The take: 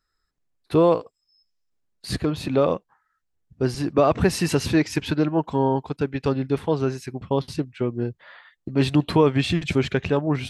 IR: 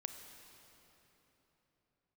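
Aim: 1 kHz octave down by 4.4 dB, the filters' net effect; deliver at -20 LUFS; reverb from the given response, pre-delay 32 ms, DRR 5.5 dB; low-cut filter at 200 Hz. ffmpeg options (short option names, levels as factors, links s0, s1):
-filter_complex "[0:a]highpass=200,equalizer=f=1000:t=o:g=-5.5,asplit=2[s0][s1];[1:a]atrim=start_sample=2205,adelay=32[s2];[s1][s2]afir=irnorm=-1:irlink=0,volume=0.708[s3];[s0][s3]amix=inputs=2:normalize=0,volume=1.58"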